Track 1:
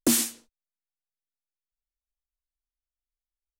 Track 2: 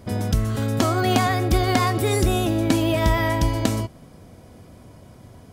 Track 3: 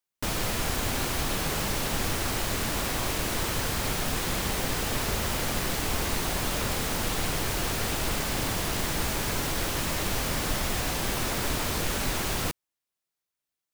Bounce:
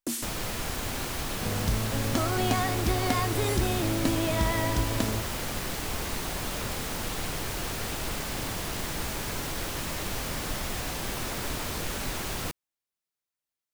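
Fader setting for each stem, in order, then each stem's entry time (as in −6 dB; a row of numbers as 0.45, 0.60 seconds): −10.5, −7.5, −4.0 decibels; 0.00, 1.35, 0.00 seconds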